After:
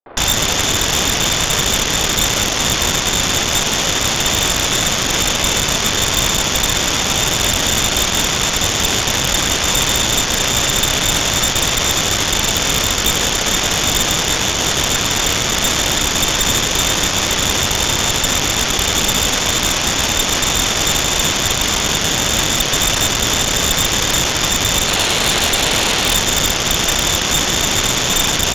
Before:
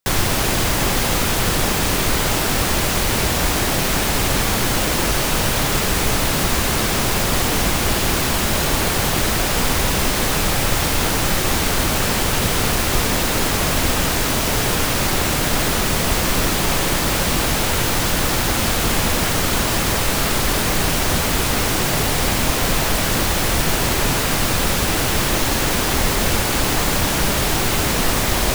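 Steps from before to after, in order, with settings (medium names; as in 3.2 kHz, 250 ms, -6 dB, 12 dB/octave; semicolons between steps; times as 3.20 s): bass shelf 320 Hz -2.5 dB; frequency inversion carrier 3.6 kHz; 24.87–26.14 s: high-order bell 550 Hz +10 dB; three bands offset in time mids, highs, lows 110/150 ms, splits 290/980 Hz; Chebyshev shaper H 8 -7 dB, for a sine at -4 dBFS; trim -1.5 dB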